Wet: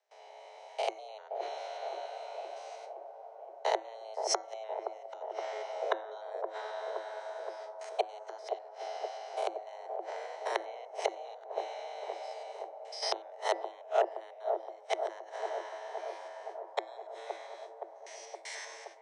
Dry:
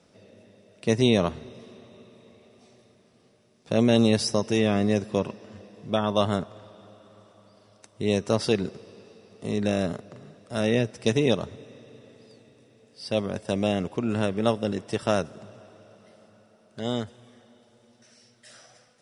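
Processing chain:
spectrum averaged block by block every 100 ms
noise gate with hold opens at −48 dBFS
parametric band 320 Hz +12 dB 0.32 octaves
automatic gain control gain up to 7.5 dB
gate with flip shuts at −13 dBFS, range −32 dB
hum removal 205.5 Hz, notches 9
frequency shifter +330 Hz
loudspeaker in its box 130–8,200 Hz, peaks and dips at 500 Hz −8 dB, 970 Hz −4 dB, 2,000 Hz +7 dB
delay with a band-pass on its return 520 ms, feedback 70%, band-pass 450 Hz, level −4.5 dB
level +1 dB

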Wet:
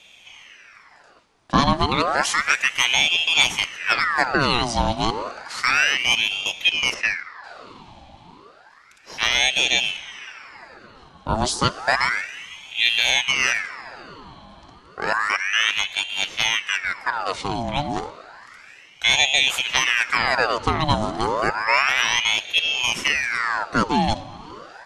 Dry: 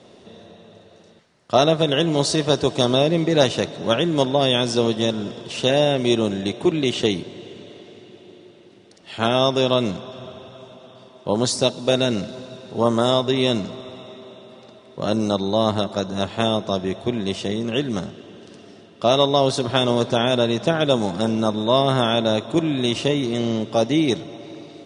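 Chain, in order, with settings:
0:06.94–0:07.44: head-to-tape spacing loss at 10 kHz 24 dB
ring modulator whose carrier an LFO sweeps 1,700 Hz, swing 75%, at 0.31 Hz
level +1.5 dB

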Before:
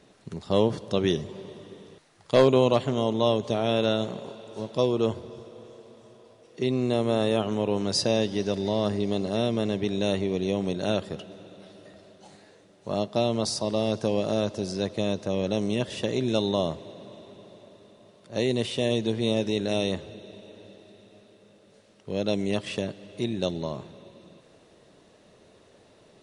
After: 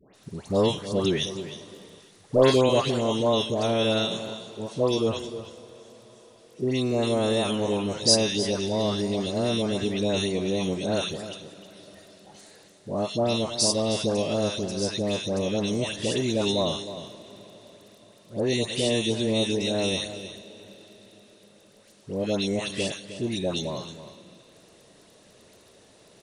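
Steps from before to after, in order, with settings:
high-shelf EQ 4,600 Hz +12 dB
surface crackle 15 per second −37 dBFS
all-pass dispersion highs, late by 145 ms, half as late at 1,400 Hz
on a send: single-tap delay 312 ms −13 dB
on the sum: downsampling to 32,000 Hz

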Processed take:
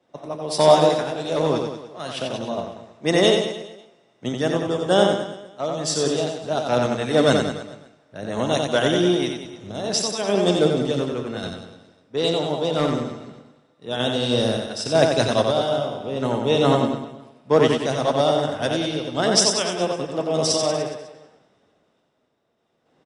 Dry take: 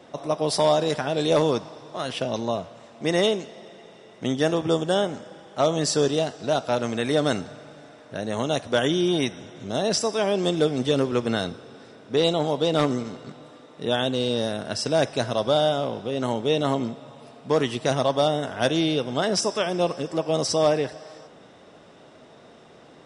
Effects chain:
sample-and-hold tremolo
reverse bouncing-ball delay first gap 90 ms, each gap 1.1×, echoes 5
multiband upward and downward expander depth 70%
level +3 dB

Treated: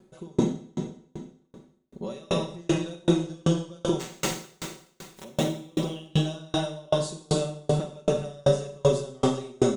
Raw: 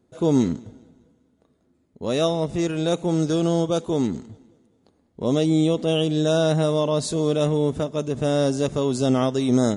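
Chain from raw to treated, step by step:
0:03.99–0:05.23: compressing power law on the bin magnitudes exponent 0.29
downward compressor 6 to 1, threshold −27 dBFS, peak gain reduction 13 dB
comb filter 5.3 ms, depth 92%
four-comb reverb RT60 2.4 s, combs from 31 ms, DRR −2 dB
tremolo with a ramp in dB decaying 2.6 Hz, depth 36 dB
level +7 dB

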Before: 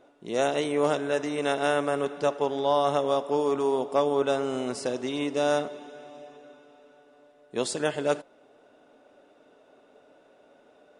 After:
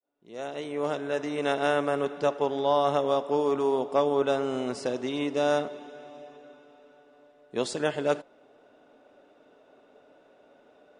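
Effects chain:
fade in at the beginning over 1.50 s
high-frequency loss of the air 52 metres

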